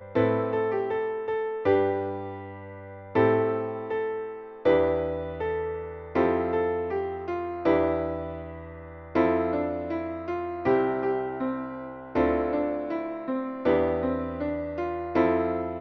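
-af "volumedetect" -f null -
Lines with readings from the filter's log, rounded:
mean_volume: -27.0 dB
max_volume: -10.2 dB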